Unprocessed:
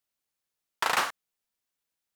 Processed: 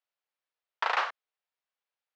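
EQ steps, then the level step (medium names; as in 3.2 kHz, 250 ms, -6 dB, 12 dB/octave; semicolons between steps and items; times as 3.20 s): high-pass 470 Hz 24 dB/octave; low-pass 6.8 kHz 12 dB/octave; distance through air 200 m; 0.0 dB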